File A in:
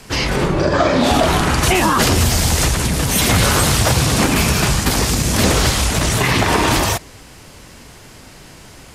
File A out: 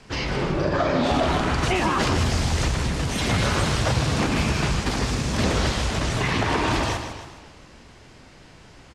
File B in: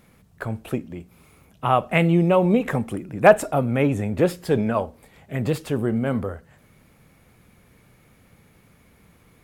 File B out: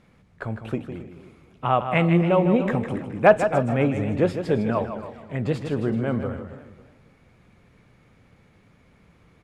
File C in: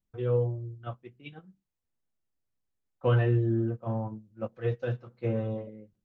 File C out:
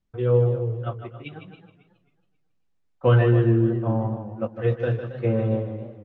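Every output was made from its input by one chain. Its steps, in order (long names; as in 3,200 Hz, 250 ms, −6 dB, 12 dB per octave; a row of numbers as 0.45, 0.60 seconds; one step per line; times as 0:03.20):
high-frequency loss of the air 86 metres
repeating echo 155 ms, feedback 30%, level −9 dB
feedback echo with a swinging delay time 271 ms, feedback 31%, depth 130 cents, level −14 dB
loudness normalisation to −23 LKFS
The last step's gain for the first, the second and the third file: −7.5, −1.5, +7.0 decibels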